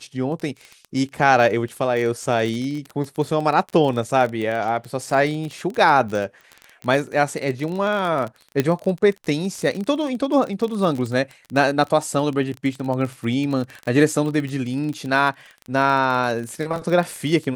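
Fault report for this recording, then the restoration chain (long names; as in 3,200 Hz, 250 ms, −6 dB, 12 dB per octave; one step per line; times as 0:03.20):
surface crackle 24 per second −25 dBFS
0:08.60: click −6 dBFS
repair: click removal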